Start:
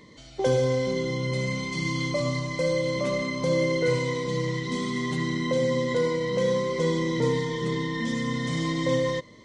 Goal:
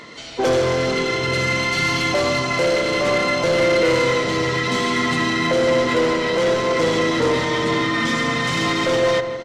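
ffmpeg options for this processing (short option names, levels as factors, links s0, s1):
-filter_complex "[0:a]asplit=4[s0][s1][s2][s3];[s1]asetrate=29433,aresample=44100,atempo=1.49831,volume=0.447[s4];[s2]asetrate=37084,aresample=44100,atempo=1.18921,volume=0.2[s5];[s3]asetrate=55563,aresample=44100,atempo=0.793701,volume=0.178[s6];[s0][s4][s5][s6]amix=inputs=4:normalize=0,asplit=2[s7][s8];[s8]highpass=f=720:p=1,volume=11.2,asoftclip=type=tanh:threshold=0.299[s9];[s7][s9]amix=inputs=2:normalize=0,lowpass=f=5400:p=1,volume=0.501,asplit=2[s10][s11];[s11]adelay=163,lowpass=f=1500:p=1,volume=0.398,asplit=2[s12][s13];[s13]adelay=163,lowpass=f=1500:p=1,volume=0.53,asplit=2[s14][s15];[s15]adelay=163,lowpass=f=1500:p=1,volume=0.53,asplit=2[s16][s17];[s17]adelay=163,lowpass=f=1500:p=1,volume=0.53,asplit=2[s18][s19];[s19]adelay=163,lowpass=f=1500:p=1,volume=0.53,asplit=2[s20][s21];[s21]adelay=163,lowpass=f=1500:p=1,volume=0.53[s22];[s10][s12][s14][s16][s18][s20][s22]amix=inputs=7:normalize=0"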